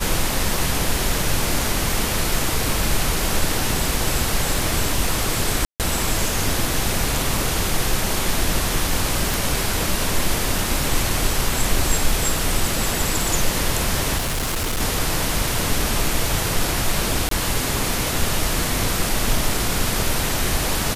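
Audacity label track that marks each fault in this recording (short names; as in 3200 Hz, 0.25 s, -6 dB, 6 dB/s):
5.650000	5.800000	gap 0.148 s
9.340000	9.340000	pop
14.170000	14.810000	clipped -19.5 dBFS
17.290000	17.310000	gap 23 ms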